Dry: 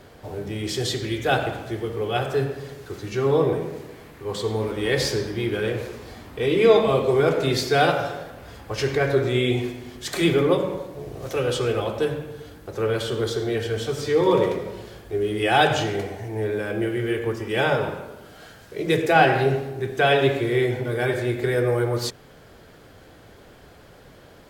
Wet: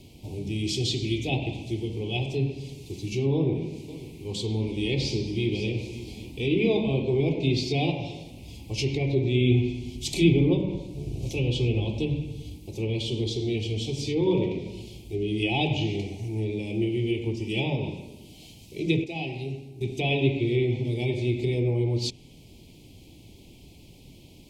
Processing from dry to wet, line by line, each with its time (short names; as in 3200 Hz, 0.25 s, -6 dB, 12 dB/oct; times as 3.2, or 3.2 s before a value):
3.33–6.32 echo 0.55 s -16.5 dB
9.41–12.56 low shelf 100 Hz +10.5 dB
19.04–19.81 gain -10 dB
whole clip: treble ducked by the level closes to 2600 Hz, closed at -17 dBFS; Chebyshev band-stop 940–2400 Hz, order 3; band shelf 720 Hz -13.5 dB; gain +1.5 dB